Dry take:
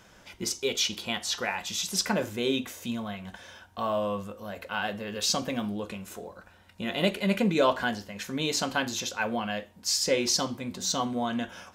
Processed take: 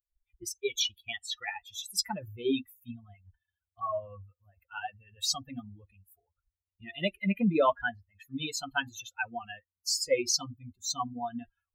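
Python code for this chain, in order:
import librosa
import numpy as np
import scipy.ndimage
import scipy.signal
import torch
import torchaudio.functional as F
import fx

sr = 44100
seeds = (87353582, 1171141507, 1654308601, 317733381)

y = fx.bin_expand(x, sr, power=3.0)
y = y * librosa.db_to_amplitude(3.0)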